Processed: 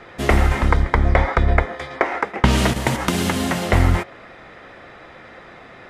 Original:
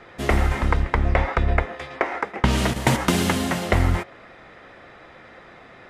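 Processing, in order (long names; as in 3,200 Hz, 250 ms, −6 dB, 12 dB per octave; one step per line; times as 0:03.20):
0:00.69–0:02.05: notch filter 2,700 Hz, Q 6.3
0:02.71–0:03.73: downward compressor, threshold −20 dBFS, peak gain reduction 7 dB
level +4 dB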